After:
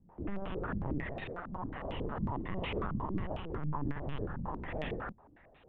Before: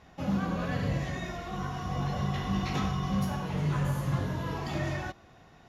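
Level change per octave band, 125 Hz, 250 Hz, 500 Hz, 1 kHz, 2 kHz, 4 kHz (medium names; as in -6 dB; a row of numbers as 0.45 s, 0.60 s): -9.5 dB, -7.0 dB, -2.5 dB, -5.5 dB, -5.5 dB, -8.5 dB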